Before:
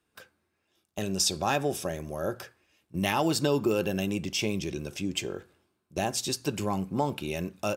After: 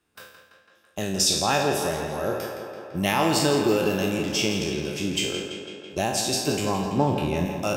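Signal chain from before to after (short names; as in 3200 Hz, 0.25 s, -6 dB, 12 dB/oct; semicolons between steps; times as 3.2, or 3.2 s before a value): spectral trails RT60 0.64 s; 6.97–7.46 tilt -2 dB/oct; tape echo 0.166 s, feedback 76%, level -7 dB, low-pass 5000 Hz; gain +2 dB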